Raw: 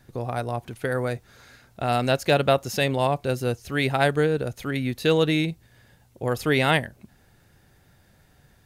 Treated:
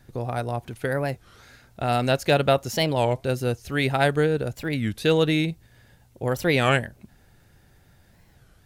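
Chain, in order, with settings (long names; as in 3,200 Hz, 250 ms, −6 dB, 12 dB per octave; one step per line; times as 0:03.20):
low-shelf EQ 63 Hz +6 dB
notch filter 1,100 Hz, Q 27
wow of a warped record 33 1/3 rpm, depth 250 cents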